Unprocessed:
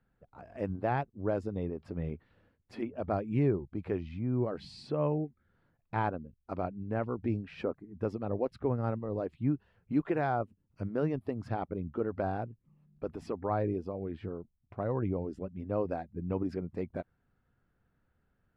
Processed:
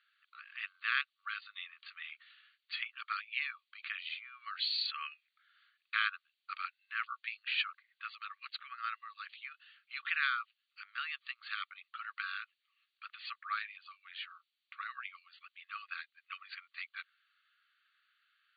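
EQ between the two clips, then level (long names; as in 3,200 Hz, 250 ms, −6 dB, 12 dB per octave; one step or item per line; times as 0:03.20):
linear-phase brick-wall band-pass 1,100–4,700 Hz
high-shelf EQ 2,500 Hz +11 dB
parametric band 3,200 Hz +12 dB 1.5 octaves
+1.0 dB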